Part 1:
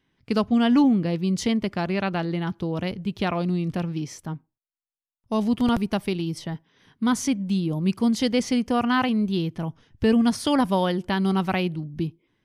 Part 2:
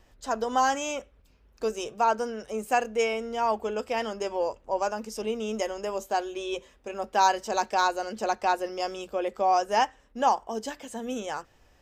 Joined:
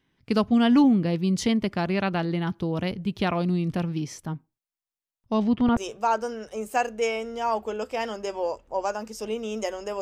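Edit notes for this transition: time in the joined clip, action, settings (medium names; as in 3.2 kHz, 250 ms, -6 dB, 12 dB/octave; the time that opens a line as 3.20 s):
part 1
5.26–5.77 s: low-pass 6.7 kHz -> 1.7 kHz
5.77 s: go over to part 2 from 1.74 s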